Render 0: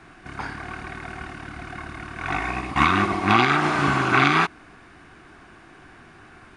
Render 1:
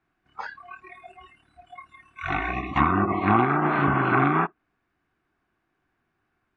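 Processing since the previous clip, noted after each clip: low-pass that closes with the level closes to 1.2 kHz, closed at -15.5 dBFS; spectral noise reduction 27 dB; treble shelf 6.1 kHz -8 dB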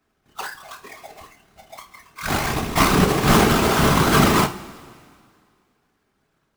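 square wave that keeps the level; whisper effect; two-slope reverb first 0.29 s, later 2.1 s, from -18 dB, DRR 5.5 dB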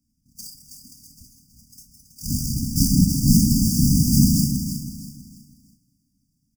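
brick-wall FIR band-stop 290–4600 Hz; feedback delay 324 ms, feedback 34%, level -9 dB; trim +2.5 dB

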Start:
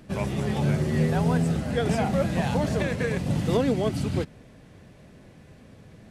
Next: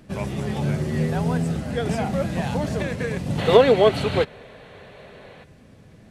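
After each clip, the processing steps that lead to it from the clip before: time-frequency box 3.38–5.44 s, 370–4500 Hz +12 dB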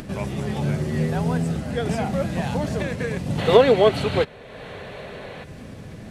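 upward compressor, threshold -27 dBFS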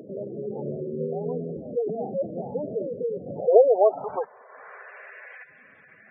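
band-pass sweep 440 Hz -> 1.8 kHz, 3.11–5.18 s; spectral gate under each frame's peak -15 dB strong; trim +2.5 dB

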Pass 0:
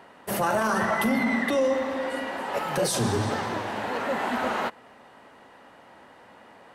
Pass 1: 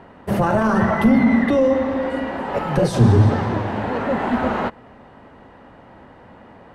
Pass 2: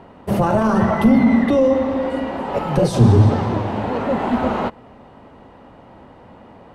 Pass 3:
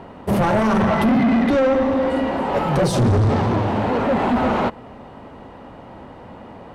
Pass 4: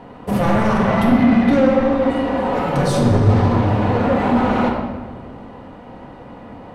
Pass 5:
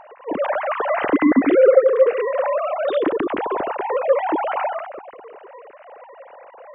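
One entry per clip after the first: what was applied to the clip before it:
RIAA curve playback; trim +4 dB
peaking EQ 1.7 kHz -6.5 dB 0.61 oct; trim +1.5 dB
saturation -18 dBFS, distortion -7 dB; trim +4.5 dB
simulated room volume 1100 m³, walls mixed, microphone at 1.9 m; trim -2.5 dB
formants replaced by sine waves; trim -3 dB

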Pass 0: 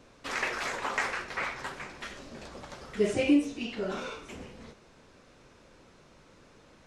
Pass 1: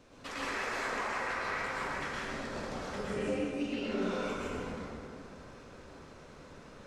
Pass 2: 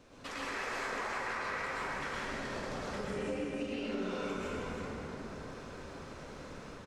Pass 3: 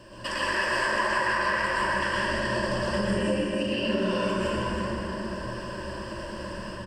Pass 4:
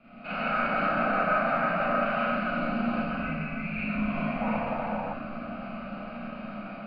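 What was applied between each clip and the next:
compression 12:1, threshold -36 dBFS, peak gain reduction 17.5 dB; plate-style reverb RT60 2.7 s, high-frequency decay 0.4×, pre-delay 95 ms, DRR -8 dB; trim -3.5 dB
level rider gain up to 4.5 dB; delay 316 ms -7.5 dB; compression 2:1, threshold -40 dBFS, peak gain reduction 8.5 dB
rippled EQ curve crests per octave 1.3, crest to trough 16 dB; trim +8.5 dB
mistuned SSB -360 Hz 450–3400 Hz; Schroeder reverb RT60 0.34 s, combs from 30 ms, DRR -6.5 dB; painted sound noise, 4.41–5.14 s, 470–990 Hz -28 dBFS; trim -7 dB

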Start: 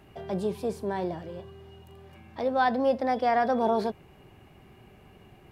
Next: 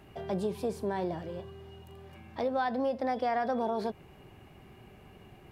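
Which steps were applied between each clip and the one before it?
compression 6:1, threshold -27 dBFS, peak gain reduction 8 dB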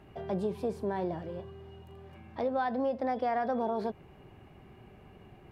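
treble shelf 3.3 kHz -9.5 dB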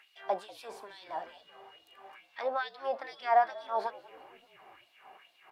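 LFO high-pass sine 2.3 Hz 720–4100 Hz; frequency-shifting echo 192 ms, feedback 59%, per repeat -67 Hz, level -21 dB; trim +2.5 dB

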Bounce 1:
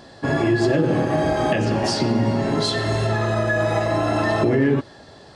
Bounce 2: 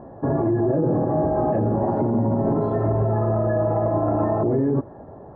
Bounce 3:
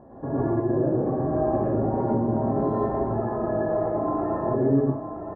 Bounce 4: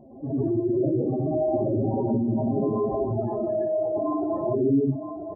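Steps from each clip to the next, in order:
low-pass 1 kHz 24 dB/octave; peak limiter -18.5 dBFS, peak gain reduction 9.5 dB; trim +5 dB
distance through air 66 m; delay 964 ms -9.5 dB; reverberation RT60 0.40 s, pre-delay 92 ms, DRR -4.5 dB; trim -8.5 dB
spectral contrast enhancement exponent 2.3

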